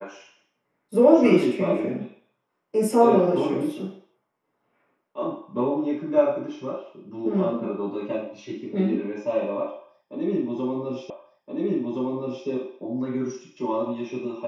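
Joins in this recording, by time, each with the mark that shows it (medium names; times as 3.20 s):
11.10 s: repeat of the last 1.37 s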